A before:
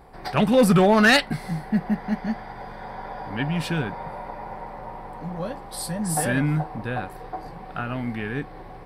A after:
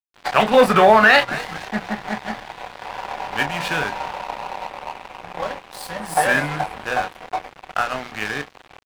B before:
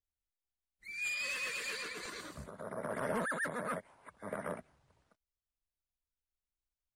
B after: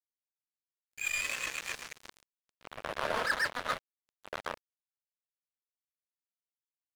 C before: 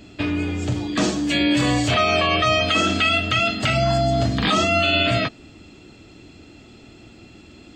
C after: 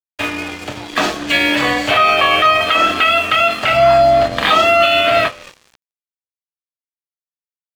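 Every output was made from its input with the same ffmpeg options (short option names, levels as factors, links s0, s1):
-filter_complex "[0:a]bandreject=f=60:t=h:w=6,bandreject=f=120:t=h:w=6,bandreject=f=180:t=h:w=6,bandreject=f=240:t=h:w=6,bandreject=f=300:t=h:w=6,bandreject=f=360:t=h:w=6,bandreject=f=420:t=h:w=6,bandreject=f=480:t=h:w=6,bandreject=f=540:t=h:w=6,asplit=2[s0][s1];[s1]adelay=28,volume=0.398[s2];[s0][s2]amix=inputs=2:normalize=0,asplit=2[s3][s4];[s4]asplit=4[s5][s6][s7][s8];[s5]adelay=242,afreqshift=-88,volume=0.119[s9];[s6]adelay=484,afreqshift=-176,volume=0.0596[s10];[s7]adelay=726,afreqshift=-264,volume=0.0299[s11];[s8]adelay=968,afreqshift=-352,volume=0.0148[s12];[s9][s10][s11][s12]amix=inputs=4:normalize=0[s13];[s3][s13]amix=inputs=2:normalize=0,aeval=exprs='val(0)+0.00141*(sin(2*PI*50*n/s)+sin(2*PI*2*50*n/s)/2+sin(2*PI*3*50*n/s)/3+sin(2*PI*4*50*n/s)/4+sin(2*PI*5*50*n/s)/5)':c=same,acrossover=split=500 3800:gain=0.158 1 0.224[s14][s15][s16];[s14][s15][s16]amix=inputs=3:normalize=0,aeval=exprs='sgn(val(0))*max(abs(val(0))-0.0112,0)':c=same,alimiter=level_in=4.47:limit=0.891:release=50:level=0:latency=1,adynamicequalizer=threshold=0.0708:dfrequency=2500:dqfactor=0.7:tfrequency=2500:tqfactor=0.7:attack=5:release=100:ratio=0.375:range=2.5:mode=cutabove:tftype=highshelf,volume=0.891"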